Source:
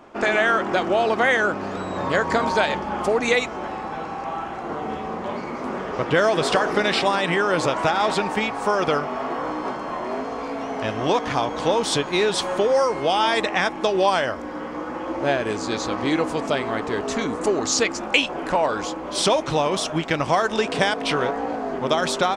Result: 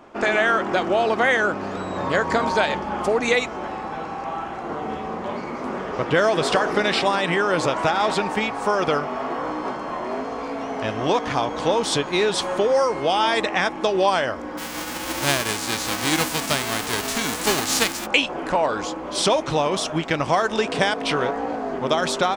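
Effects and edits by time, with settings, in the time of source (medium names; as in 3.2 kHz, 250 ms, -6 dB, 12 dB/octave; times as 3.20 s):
14.57–18.05 s: formants flattened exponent 0.3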